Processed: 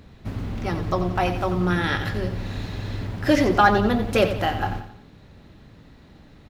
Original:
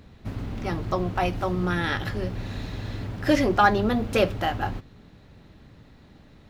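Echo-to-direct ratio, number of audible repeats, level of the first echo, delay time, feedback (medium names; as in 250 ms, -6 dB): -9.0 dB, 4, -10.0 dB, 89 ms, 42%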